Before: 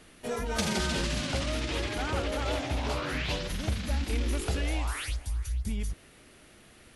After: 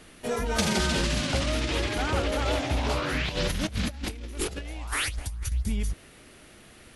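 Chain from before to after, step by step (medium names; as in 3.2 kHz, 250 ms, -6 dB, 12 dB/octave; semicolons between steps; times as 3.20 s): 3.29–5.52 s: compressor with a negative ratio -34 dBFS, ratio -0.5; trim +4 dB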